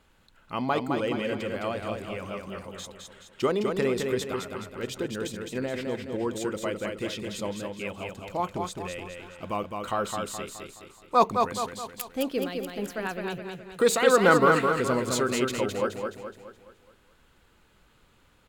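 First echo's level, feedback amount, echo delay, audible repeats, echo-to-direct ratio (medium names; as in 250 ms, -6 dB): -4.5 dB, 46%, 211 ms, 5, -3.5 dB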